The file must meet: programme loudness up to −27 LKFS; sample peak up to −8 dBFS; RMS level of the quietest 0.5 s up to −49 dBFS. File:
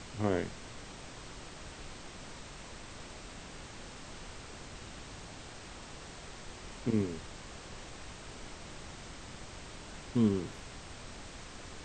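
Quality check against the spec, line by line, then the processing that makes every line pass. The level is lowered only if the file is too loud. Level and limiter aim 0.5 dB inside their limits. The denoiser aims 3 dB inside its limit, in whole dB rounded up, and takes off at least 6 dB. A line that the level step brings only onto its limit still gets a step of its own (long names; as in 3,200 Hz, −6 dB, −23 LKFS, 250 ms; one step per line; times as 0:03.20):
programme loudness −40.5 LKFS: in spec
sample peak −17.0 dBFS: in spec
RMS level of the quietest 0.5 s −48 dBFS: out of spec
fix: broadband denoise 6 dB, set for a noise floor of −48 dBFS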